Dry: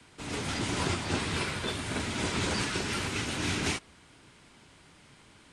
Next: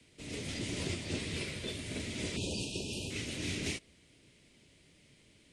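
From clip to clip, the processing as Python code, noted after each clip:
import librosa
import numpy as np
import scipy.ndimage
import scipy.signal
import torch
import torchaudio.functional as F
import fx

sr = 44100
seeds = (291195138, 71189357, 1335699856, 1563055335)

y = fx.band_shelf(x, sr, hz=1100.0, db=-13.0, octaves=1.3)
y = fx.spec_erase(y, sr, start_s=2.36, length_s=0.74, low_hz=970.0, high_hz=2400.0)
y = np.clip(y, -10.0 ** (-20.0 / 20.0), 10.0 ** (-20.0 / 20.0))
y = y * librosa.db_to_amplitude(-5.5)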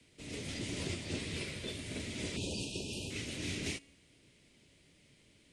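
y = fx.comb_fb(x, sr, f0_hz=280.0, decay_s=0.87, harmonics='all', damping=0.0, mix_pct=40)
y = y * librosa.db_to_amplitude(2.5)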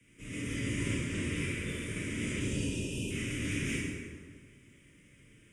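y = fx.fixed_phaser(x, sr, hz=1800.0, stages=4)
y = fx.rev_plate(y, sr, seeds[0], rt60_s=1.8, hf_ratio=0.6, predelay_ms=0, drr_db=-7.0)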